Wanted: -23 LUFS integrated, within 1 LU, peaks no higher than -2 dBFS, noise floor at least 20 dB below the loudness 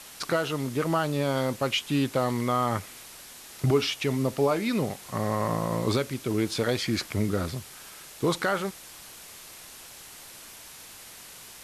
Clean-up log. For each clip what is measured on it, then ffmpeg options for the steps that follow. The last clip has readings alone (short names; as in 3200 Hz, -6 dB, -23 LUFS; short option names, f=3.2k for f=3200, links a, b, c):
noise floor -46 dBFS; noise floor target -48 dBFS; loudness -27.5 LUFS; peak -12.0 dBFS; loudness target -23.0 LUFS
-> -af "afftdn=nr=6:nf=-46"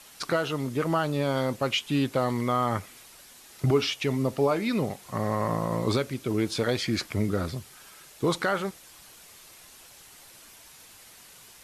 noise floor -51 dBFS; loudness -27.5 LUFS; peak -12.0 dBFS; loudness target -23.0 LUFS
-> -af "volume=4.5dB"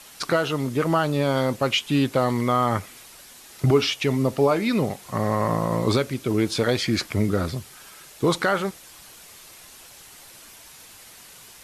loudness -23.0 LUFS; peak -7.5 dBFS; noise floor -47 dBFS